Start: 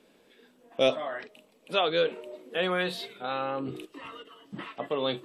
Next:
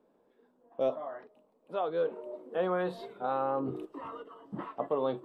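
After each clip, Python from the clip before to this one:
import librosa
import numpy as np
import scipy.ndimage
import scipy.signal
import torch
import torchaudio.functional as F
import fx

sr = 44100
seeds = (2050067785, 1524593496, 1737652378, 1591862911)

y = fx.curve_eq(x, sr, hz=(170.0, 1000.0, 2400.0), db=(0, 5, -15))
y = fx.rider(y, sr, range_db=5, speed_s=0.5)
y = F.gain(torch.from_numpy(y), -4.5).numpy()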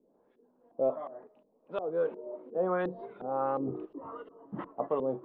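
y = fx.filter_lfo_lowpass(x, sr, shape='saw_up', hz=2.8, low_hz=320.0, high_hz=3500.0, q=1.0)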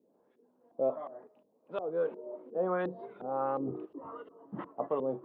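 y = scipy.signal.sosfilt(scipy.signal.butter(2, 79.0, 'highpass', fs=sr, output='sos'), x)
y = F.gain(torch.from_numpy(y), -1.5).numpy()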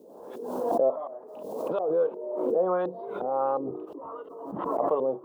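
y = fx.graphic_eq(x, sr, hz=(125, 250, 500, 1000, 2000), db=(-7, -4, 3, 4, -12))
y = fx.pre_swell(y, sr, db_per_s=39.0)
y = F.gain(torch.from_numpy(y), 4.0).numpy()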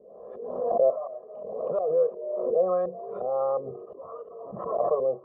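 y = scipy.signal.sosfilt(scipy.signal.butter(2, 1000.0, 'lowpass', fs=sr, output='sos'), x)
y = y + 0.94 * np.pad(y, (int(1.7 * sr / 1000.0), 0))[:len(y)]
y = F.gain(torch.from_numpy(y), -2.5).numpy()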